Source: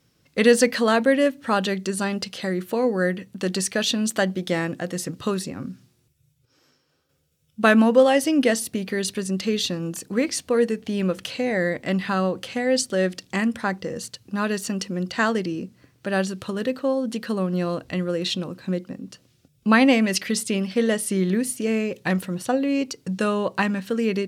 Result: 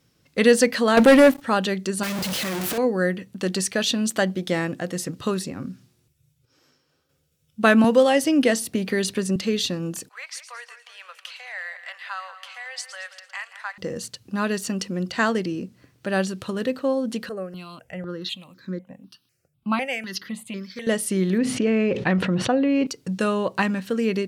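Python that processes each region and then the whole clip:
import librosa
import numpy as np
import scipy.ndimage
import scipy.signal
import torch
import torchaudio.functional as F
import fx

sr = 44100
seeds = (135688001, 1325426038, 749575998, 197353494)

y = fx.chain(x, sr, fx.high_shelf(hz=10000.0, db=7.0),
    fx.leveller(passes=3), at=(0.97, 1.42))
y = fx.chain(y, sr, fx.clip_1bit(),
    fx.highpass(hz=68.0, slope=12), at=(2.03, 2.78))
y = fx.chain(y, sr, fx.highpass(hz=50.0, slope=12),
    fx.band_squash(depth_pct=40), at=(7.84, 9.36))
y = fx.chain(y, sr, fx.bessel_highpass(hz=1400.0, order=8),
    fx.high_shelf(hz=3400.0, db=-11.0),
    fx.echo_split(split_hz=2800.0, low_ms=180, high_ms=112, feedback_pct=52, wet_db=-12), at=(10.09, 13.78))
y = fx.chain(y, sr, fx.low_shelf(hz=110.0, db=-11.5),
    fx.harmonic_tremolo(hz=1.3, depth_pct=70, crossover_hz=1700.0),
    fx.phaser_held(hz=4.0, low_hz=960.0, high_hz=2800.0), at=(17.29, 20.87))
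y = fx.chain(y, sr, fx.lowpass(hz=2900.0, slope=12),
    fx.env_flatten(amount_pct=70), at=(21.38, 22.87))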